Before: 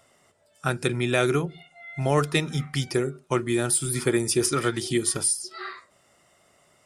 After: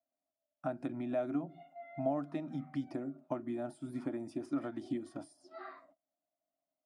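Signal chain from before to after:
noise gate −55 dBFS, range −29 dB
downward compressor 4 to 1, threshold −30 dBFS, peak gain reduction 12 dB
pair of resonant band-passes 430 Hz, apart 1.2 octaves
level +7 dB

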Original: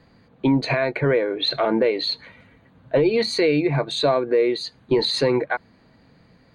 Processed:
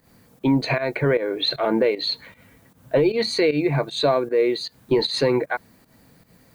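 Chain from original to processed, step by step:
background noise blue −62 dBFS
fake sidechain pumping 154 BPM, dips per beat 1, −13 dB, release 133 ms

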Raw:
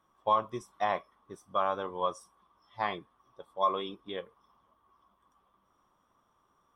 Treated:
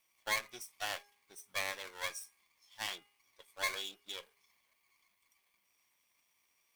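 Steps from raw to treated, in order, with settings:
lower of the sound and its delayed copy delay 0.35 ms
first-order pre-emphasis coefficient 0.97
hum removal 408.5 Hz, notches 7
level +8.5 dB

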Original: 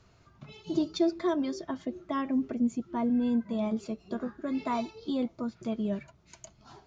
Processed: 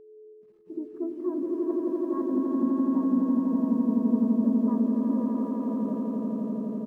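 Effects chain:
stylus tracing distortion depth 0.35 ms
low-pass that shuts in the quiet parts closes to 520 Hz, open at −24.5 dBFS
Chebyshev band-pass filter 190–1,500 Hz, order 3
low-shelf EQ 230 Hz −3 dB
in parallel at 0 dB: downward compressor 16 to 1, threshold −36 dBFS, peak gain reduction 14.5 dB
on the sum: notch comb filter 720 Hz
bit reduction 8 bits
steady tone 430 Hz −36 dBFS
pitch-shifted copies added −4 semitones −12 dB
on a send: echo that builds up and dies away 84 ms, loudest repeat 8, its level −3.5 dB
on the sum: every bin expanded away from the loudest bin 1.5 to 1
level −4.5 dB

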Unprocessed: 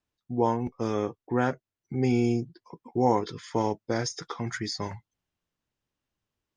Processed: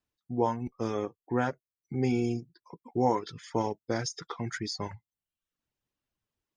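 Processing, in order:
reverb reduction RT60 0.65 s
level −2 dB

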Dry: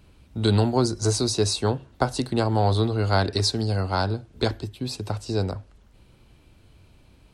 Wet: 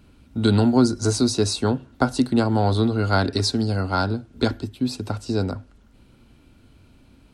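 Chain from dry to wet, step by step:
hollow resonant body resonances 250/1,400 Hz, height 10 dB, ringing for 45 ms

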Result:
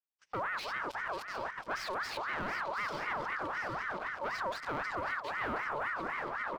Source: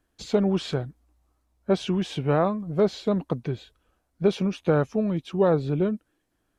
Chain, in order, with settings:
feedback delay that plays each chunk backwards 307 ms, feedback 64%, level −10 dB
low-pass filter 3,700 Hz 12 dB per octave
noise gate −39 dBFS, range −33 dB
leveller curve on the samples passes 3
brickwall limiter −33.5 dBFS, peak gain reduction 24 dB
on a send: single-tap delay 721 ms −9.5 dB
on the sum: ring modulator whose carrier an LFO sweeps 1,200 Hz, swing 40%, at 3.9 Hz
level +4 dB

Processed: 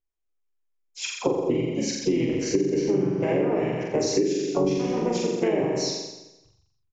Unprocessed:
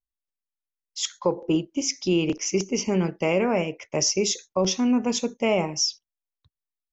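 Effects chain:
thirty-one-band graphic EQ 250 Hz −10 dB, 400 Hz +11 dB, 3,150 Hz +11 dB, 6,300 Hz −3 dB
flutter between parallel walls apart 7.3 metres, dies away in 0.96 s
pitch-shifted copies added −5 semitones −4 dB, −4 semitones −7 dB, +4 semitones −16 dB
downsampling to 16,000 Hz
parametric band 3,400 Hz −15 dB 1.3 octaves
downward compressor 6 to 1, threshold −20 dBFS, peak gain reduction 12.5 dB

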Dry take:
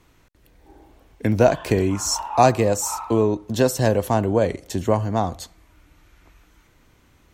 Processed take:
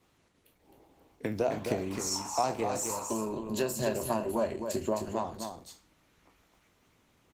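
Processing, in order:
peak hold with a decay on every bin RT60 0.36 s
high-pass filter 93 Hz 12 dB per octave
parametric band 1,600 Hz −5.5 dB 0.2 octaves
mains-hum notches 60/120/180/240/300/360 Hz
harmonic and percussive parts rebalanced harmonic −9 dB
0:02.89–0:05.25: EQ curve with evenly spaced ripples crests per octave 1.4, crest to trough 11 dB
downward compressor 2 to 1, threshold −25 dBFS, peak gain reduction 8 dB
single-tap delay 262 ms −6 dB
level −5 dB
Opus 16 kbit/s 48,000 Hz

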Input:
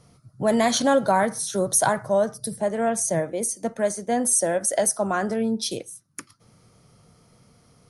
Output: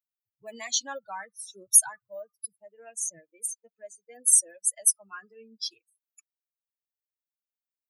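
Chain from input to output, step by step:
spectral dynamics exaggerated over time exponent 3
first difference
notch filter 710 Hz, Q 12
level +5.5 dB

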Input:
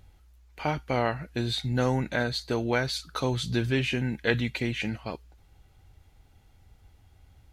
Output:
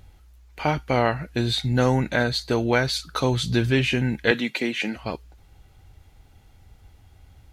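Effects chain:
0:04.31–0:04.96: high-pass filter 210 Hz 24 dB per octave
level +5.5 dB

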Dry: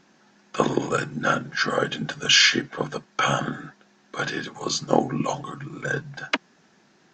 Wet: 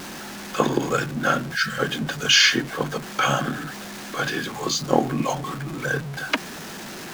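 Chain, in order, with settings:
converter with a step at zero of −30.5 dBFS
gain on a spectral selection 0:01.56–0:01.79, 230–1,300 Hz −18 dB

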